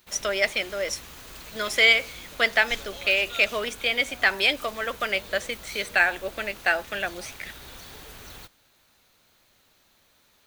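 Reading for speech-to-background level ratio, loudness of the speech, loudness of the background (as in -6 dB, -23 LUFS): 17.0 dB, -24.0 LUFS, -41.0 LUFS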